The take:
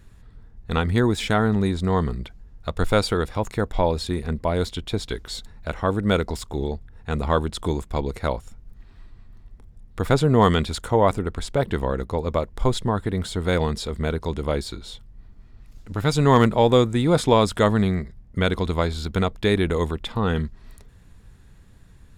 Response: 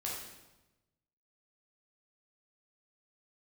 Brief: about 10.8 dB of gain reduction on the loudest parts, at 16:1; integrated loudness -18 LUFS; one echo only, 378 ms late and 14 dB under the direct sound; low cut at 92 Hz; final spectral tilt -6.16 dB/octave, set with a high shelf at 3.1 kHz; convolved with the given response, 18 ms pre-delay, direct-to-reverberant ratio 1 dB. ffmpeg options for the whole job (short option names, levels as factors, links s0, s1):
-filter_complex "[0:a]highpass=92,highshelf=f=3100:g=-8.5,acompressor=threshold=0.0794:ratio=16,aecho=1:1:378:0.2,asplit=2[s0][s1];[1:a]atrim=start_sample=2205,adelay=18[s2];[s1][s2]afir=irnorm=-1:irlink=0,volume=0.708[s3];[s0][s3]amix=inputs=2:normalize=0,volume=2.82"